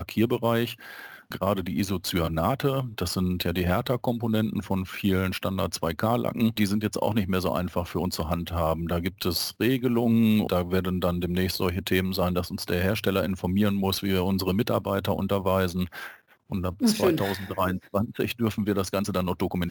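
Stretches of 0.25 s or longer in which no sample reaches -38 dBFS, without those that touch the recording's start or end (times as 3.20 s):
16.14–16.51 s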